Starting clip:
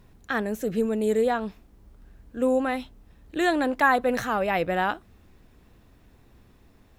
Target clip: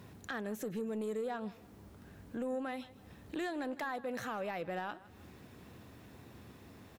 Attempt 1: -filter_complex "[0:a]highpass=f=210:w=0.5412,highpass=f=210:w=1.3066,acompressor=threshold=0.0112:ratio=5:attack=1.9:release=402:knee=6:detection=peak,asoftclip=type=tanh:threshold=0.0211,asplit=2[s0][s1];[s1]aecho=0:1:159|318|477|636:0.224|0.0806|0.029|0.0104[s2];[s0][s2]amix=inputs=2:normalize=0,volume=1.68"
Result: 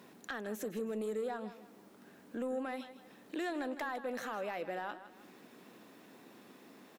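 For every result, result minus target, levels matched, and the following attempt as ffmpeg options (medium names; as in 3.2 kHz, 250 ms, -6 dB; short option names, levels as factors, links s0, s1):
125 Hz band -6.0 dB; echo-to-direct +6 dB
-filter_complex "[0:a]highpass=f=83:w=0.5412,highpass=f=83:w=1.3066,acompressor=threshold=0.0112:ratio=5:attack=1.9:release=402:knee=6:detection=peak,asoftclip=type=tanh:threshold=0.0211,asplit=2[s0][s1];[s1]aecho=0:1:159|318|477|636:0.224|0.0806|0.029|0.0104[s2];[s0][s2]amix=inputs=2:normalize=0,volume=1.68"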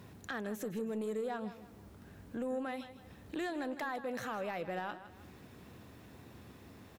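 echo-to-direct +6 dB
-filter_complex "[0:a]highpass=f=83:w=0.5412,highpass=f=83:w=1.3066,acompressor=threshold=0.0112:ratio=5:attack=1.9:release=402:knee=6:detection=peak,asoftclip=type=tanh:threshold=0.0211,asplit=2[s0][s1];[s1]aecho=0:1:159|318|477:0.112|0.0404|0.0145[s2];[s0][s2]amix=inputs=2:normalize=0,volume=1.68"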